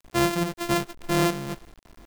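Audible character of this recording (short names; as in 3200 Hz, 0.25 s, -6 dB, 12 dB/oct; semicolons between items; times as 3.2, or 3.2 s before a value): a buzz of ramps at a fixed pitch in blocks of 128 samples; tremolo saw up 2.3 Hz, depth 50%; a quantiser's noise floor 8-bit, dither none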